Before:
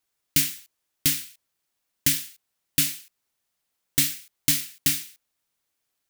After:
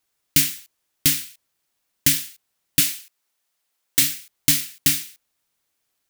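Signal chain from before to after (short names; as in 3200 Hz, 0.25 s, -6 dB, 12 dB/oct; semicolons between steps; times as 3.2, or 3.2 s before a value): 2.8–4.02 HPF 440 Hz 6 dB/oct; gain +4 dB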